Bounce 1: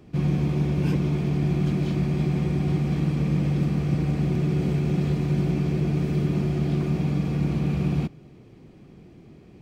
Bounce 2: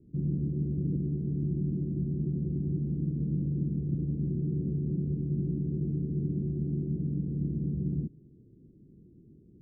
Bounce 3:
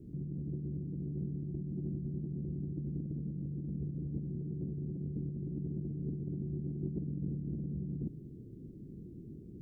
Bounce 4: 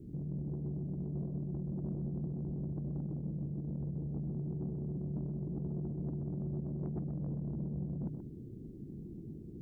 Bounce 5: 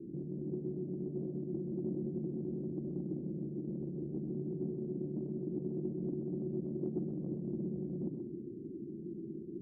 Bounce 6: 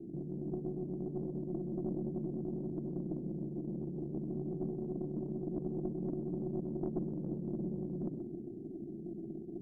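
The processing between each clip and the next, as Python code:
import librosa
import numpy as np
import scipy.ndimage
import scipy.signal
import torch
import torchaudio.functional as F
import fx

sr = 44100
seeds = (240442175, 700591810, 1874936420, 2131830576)

y1 = scipy.signal.sosfilt(scipy.signal.cheby2(4, 50, 990.0, 'lowpass', fs=sr, output='sos'), x)
y1 = y1 * 10.0 ** (-7.0 / 20.0)
y2 = fx.over_compress(y1, sr, threshold_db=-38.0, ratio=-1.0)
y3 = 10.0 ** (-34.0 / 20.0) * np.tanh(y2 / 10.0 ** (-34.0 / 20.0))
y3 = y3 + 10.0 ** (-7.0 / 20.0) * np.pad(y3, (int(129 * sr / 1000.0), 0))[:len(y3)]
y3 = y3 * 10.0 ** (1.5 / 20.0)
y4 = fx.bandpass_q(y3, sr, hz=330.0, q=2.6)
y4 = fx.room_shoebox(y4, sr, seeds[0], volume_m3=2900.0, walls='furnished', distance_m=0.99)
y4 = y4 * 10.0 ** (8.0 / 20.0)
y5 = fx.tracing_dist(y4, sr, depth_ms=0.25)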